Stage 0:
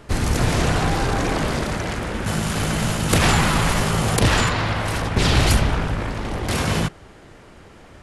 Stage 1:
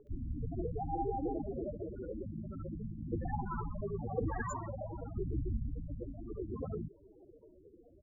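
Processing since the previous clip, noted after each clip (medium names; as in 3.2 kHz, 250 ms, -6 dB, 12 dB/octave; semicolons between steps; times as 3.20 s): loudest bins only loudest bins 8; resonant low shelf 260 Hz -12 dB, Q 1.5; bands offset in time lows, highs 70 ms, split 1.3 kHz; trim -5 dB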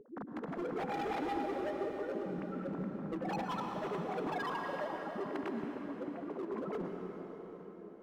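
formants replaced by sine waves; hard clipper -37 dBFS, distortion -7 dB; plate-style reverb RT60 4.5 s, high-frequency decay 0.85×, pre-delay 95 ms, DRR 2 dB; trim +1 dB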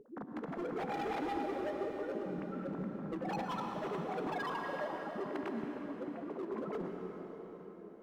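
feedback comb 75 Hz, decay 0.87 s, harmonics all, mix 50%; trim +4.5 dB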